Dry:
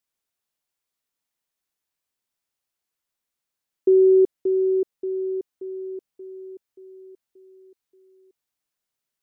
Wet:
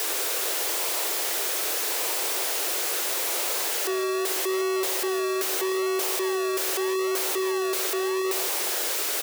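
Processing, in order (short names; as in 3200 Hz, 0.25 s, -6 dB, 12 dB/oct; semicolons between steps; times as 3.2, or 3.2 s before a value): infinite clipping; outdoor echo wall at 28 m, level -11 dB; in parallel at -7 dB: decimation with a swept rate 34×, swing 60% 0.8 Hz; on the sum: steep high-pass 350 Hz 48 dB/oct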